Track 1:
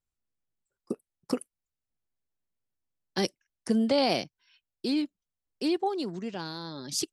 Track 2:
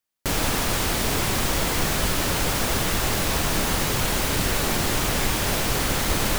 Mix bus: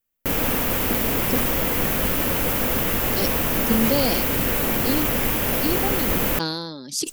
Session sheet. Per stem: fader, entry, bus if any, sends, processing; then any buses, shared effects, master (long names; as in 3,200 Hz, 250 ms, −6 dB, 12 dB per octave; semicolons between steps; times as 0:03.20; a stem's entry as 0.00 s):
−3.0 dB, 0.00 s, no send, no processing
−2.5 dB, 0.00 s, no send, flat-topped bell 6,100 Hz −11 dB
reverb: not used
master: high-shelf EQ 4,400 Hz +10.5 dB; hollow resonant body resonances 250/490 Hz, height 7 dB, ringing for 25 ms; level that may fall only so fast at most 35 dB per second